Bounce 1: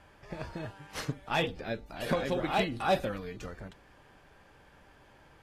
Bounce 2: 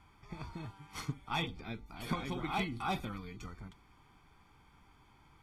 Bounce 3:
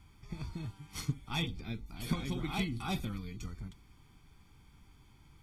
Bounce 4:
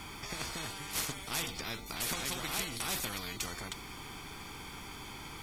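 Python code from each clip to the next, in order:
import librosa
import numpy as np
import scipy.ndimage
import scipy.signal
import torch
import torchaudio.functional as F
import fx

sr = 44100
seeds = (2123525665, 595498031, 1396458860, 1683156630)

y1 = x + 0.79 * np.pad(x, (int(0.9 * sr / 1000.0), 0))[:len(x)]
y1 = F.gain(torch.from_numpy(y1), -7.0).numpy()
y2 = fx.peak_eq(y1, sr, hz=960.0, db=-12.5, octaves=3.0)
y2 = F.gain(torch.from_numpy(y2), 6.5).numpy()
y3 = fx.spectral_comp(y2, sr, ratio=4.0)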